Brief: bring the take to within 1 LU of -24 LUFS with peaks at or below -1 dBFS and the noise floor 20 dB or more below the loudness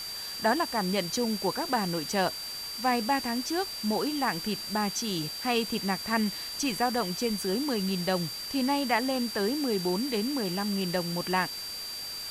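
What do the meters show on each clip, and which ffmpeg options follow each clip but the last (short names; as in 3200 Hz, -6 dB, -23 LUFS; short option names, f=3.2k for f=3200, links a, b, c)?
steady tone 4700 Hz; tone level -36 dBFS; noise floor -38 dBFS; noise floor target -49 dBFS; loudness -29.0 LUFS; peak -13.0 dBFS; loudness target -24.0 LUFS
-> -af "bandreject=f=4.7k:w=30"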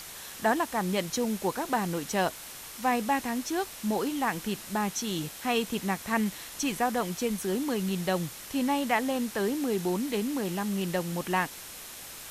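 steady tone none; noise floor -44 dBFS; noise floor target -50 dBFS
-> -af "afftdn=nr=6:nf=-44"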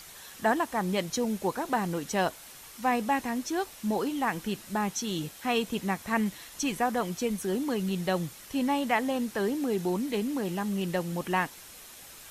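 noise floor -48 dBFS; noise floor target -50 dBFS
-> -af "afftdn=nr=6:nf=-48"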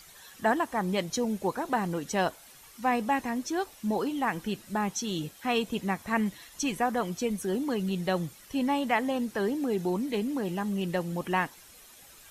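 noise floor -53 dBFS; loudness -30.0 LUFS; peak -14.0 dBFS; loudness target -24.0 LUFS
-> -af "volume=6dB"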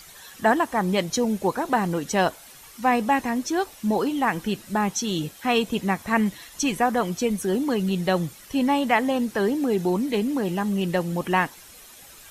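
loudness -24.0 LUFS; peak -8.0 dBFS; noise floor -47 dBFS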